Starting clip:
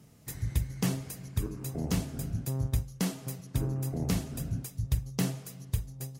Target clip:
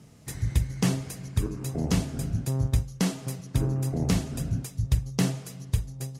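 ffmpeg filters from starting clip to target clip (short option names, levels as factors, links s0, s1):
-af "lowpass=10000,volume=1.78"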